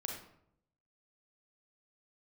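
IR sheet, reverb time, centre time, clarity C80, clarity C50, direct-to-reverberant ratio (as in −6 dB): 0.70 s, 36 ms, 7.0 dB, 3.5 dB, 0.5 dB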